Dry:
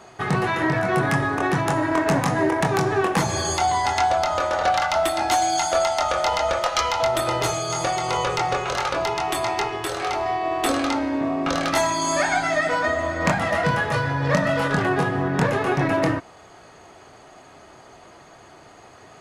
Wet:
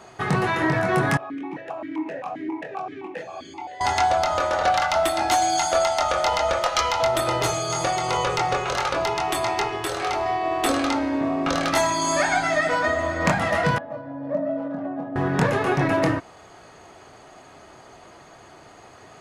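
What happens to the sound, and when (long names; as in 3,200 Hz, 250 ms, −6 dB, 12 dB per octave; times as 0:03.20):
0:01.17–0:03.81: formant filter that steps through the vowels 7.6 Hz
0:13.78–0:15.16: pair of resonant band-passes 410 Hz, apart 1.1 octaves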